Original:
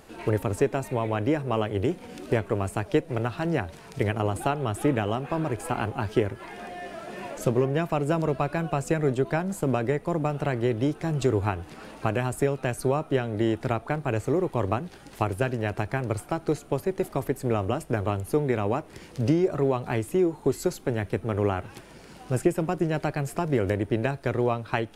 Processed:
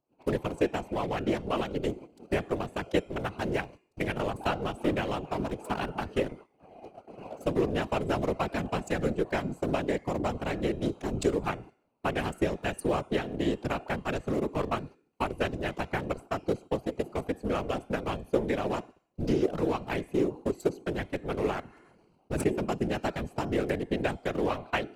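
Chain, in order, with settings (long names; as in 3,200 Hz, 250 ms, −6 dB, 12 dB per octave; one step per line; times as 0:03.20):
adaptive Wiener filter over 25 samples
noise gate −39 dBFS, range −27 dB
high-pass filter 130 Hz
high-shelf EQ 2,300 Hz +10.5 dB
hum removal 349.5 Hz, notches 29
random phases in short frames
0:21.69–0:22.47: level that may fall only so fast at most 27 dB per second
level −3.5 dB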